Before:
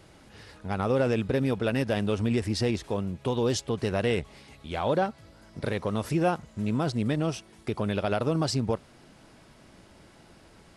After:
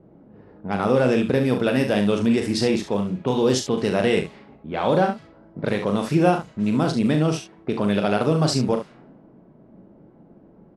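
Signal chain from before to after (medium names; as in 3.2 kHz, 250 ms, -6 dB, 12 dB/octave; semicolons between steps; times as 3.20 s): level-controlled noise filter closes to 450 Hz, open at -24.5 dBFS; resonant low shelf 120 Hz -9.5 dB, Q 1.5; on a send: early reflections 39 ms -6.5 dB, 70 ms -9.5 dB; on the sum: trim +5 dB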